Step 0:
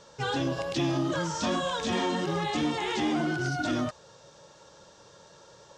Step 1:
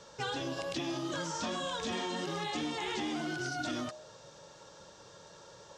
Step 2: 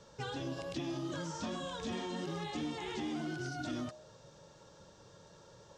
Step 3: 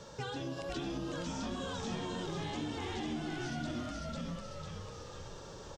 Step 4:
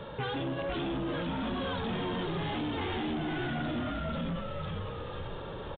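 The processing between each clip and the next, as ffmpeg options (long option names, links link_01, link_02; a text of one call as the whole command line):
ffmpeg -i in.wav -filter_complex "[0:a]bandreject=frequency=68.49:width_type=h:width=4,bandreject=frequency=136.98:width_type=h:width=4,bandreject=frequency=205.47:width_type=h:width=4,bandreject=frequency=273.96:width_type=h:width=4,bandreject=frequency=342.45:width_type=h:width=4,bandreject=frequency=410.94:width_type=h:width=4,bandreject=frequency=479.43:width_type=h:width=4,bandreject=frequency=547.92:width_type=h:width=4,bandreject=frequency=616.41:width_type=h:width=4,bandreject=frequency=684.9:width_type=h:width=4,bandreject=frequency=753.39:width_type=h:width=4,bandreject=frequency=821.88:width_type=h:width=4,bandreject=frequency=890.37:width_type=h:width=4,bandreject=frequency=958.86:width_type=h:width=4,bandreject=frequency=1027.35:width_type=h:width=4,bandreject=frequency=1095.84:width_type=h:width=4,acrossover=split=220|2600[link_01][link_02][link_03];[link_01]acompressor=threshold=-49dB:ratio=4[link_04];[link_02]acompressor=threshold=-36dB:ratio=4[link_05];[link_03]acompressor=threshold=-41dB:ratio=4[link_06];[link_04][link_05][link_06]amix=inputs=3:normalize=0" out.wav
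ffmpeg -i in.wav -af "lowshelf=frequency=330:gain=10,volume=-7dB" out.wav
ffmpeg -i in.wav -filter_complex "[0:a]asplit=2[link_01][link_02];[link_02]asplit=6[link_03][link_04][link_05][link_06][link_07][link_08];[link_03]adelay=498,afreqshift=-75,volume=-3dB[link_09];[link_04]adelay=996,afreqshift=-150,volume=-10.3dB[link_10];[link_05]adelay=1494,afreqshift=-225,volume=-17.7dB[link_11];[link_06]adelay=1992,afreqshift=-300,volume=-25dB[link_12];[link_07]adelay=2490,afreqshift=-375,volume=-32.3dB[link_13];[link_08]adelay=2988,afreqshift=-450,volume=-39.7dB[link_14];[link_09][link_10][link_11][link_12][link_13][link_14]amix=inputs=6:normalize=0[link_15];[link_01][link_15]amix=inputs=2:normalize=0,acompressor=threshold=-50dB:ratio=2,volume=7.5dB" out.wav
ffmpeg -i in.wav -af "aeval=exprs='0.0473*(cos(1*acos(clip(val(0)/0.0473,-1,1)))-cos(1*PI/2))+0.0168*(cos(5*acos(clip(val(0)/0.0473,-1,1)))-cos(5*PI/2))':channel_layout=same,aresample=8000,aresample=44100" out.wav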